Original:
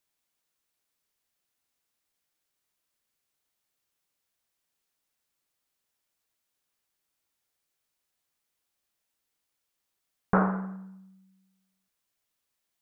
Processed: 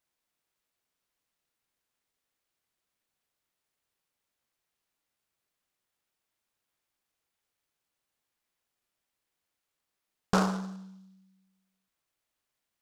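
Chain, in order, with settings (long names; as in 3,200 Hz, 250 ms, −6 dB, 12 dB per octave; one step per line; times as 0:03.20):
short delay modulated by noise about 4,400 Hz, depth 0.041 ms
level −2 dB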